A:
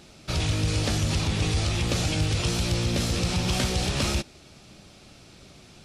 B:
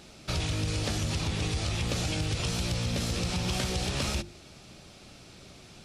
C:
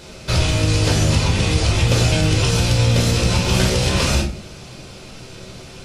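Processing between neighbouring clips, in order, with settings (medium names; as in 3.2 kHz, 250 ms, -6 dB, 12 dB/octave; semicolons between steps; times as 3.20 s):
hum notches 50/100/150/200/250/300/350 Hz; compression 3:1, threshold -28 dBFS, peak gain reduction 5.5 dB
reverberation RT60 0.50 s, pre-delay 8 ms, DRR -0.5 dB; trim +8 dB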